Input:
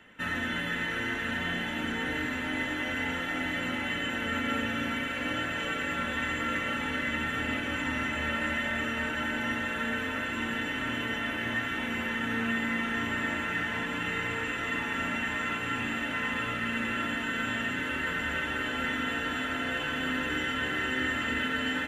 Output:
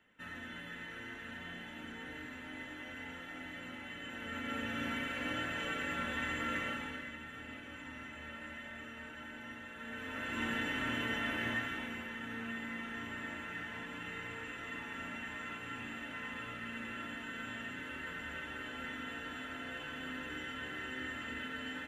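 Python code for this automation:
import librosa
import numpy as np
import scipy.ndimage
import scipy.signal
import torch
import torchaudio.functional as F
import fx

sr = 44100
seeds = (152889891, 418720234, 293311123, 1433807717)

y = fx.gain(x, sr, db=fx.line((3.95, -14.5), (4.87, -6.0), (6.64, -6.0), (7.18, -16.5), (9.75, -16.5), (10.43, -4.0), (11.47, -4.0), (12.07, -12.0)))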